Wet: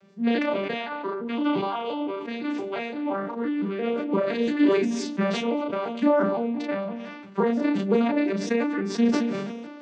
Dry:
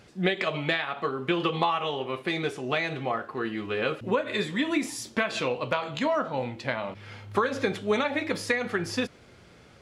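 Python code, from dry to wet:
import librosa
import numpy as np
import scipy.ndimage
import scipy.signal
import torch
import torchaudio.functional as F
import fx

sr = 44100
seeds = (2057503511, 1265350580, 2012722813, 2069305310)

y = fx.vocoder_arp(x, sr, chord='minor triad', root=55, every_ms=172)
y = fx.doubler(y, sr, ms=34.0, db=-3)
y = y + 10.0 ** (-20.5 / 20.0) * np.pad(y, (int(220 * sr / 1000.0), 0))[:len(y)]
y = fx.sustainer(y, sr, db_per_s=34.0)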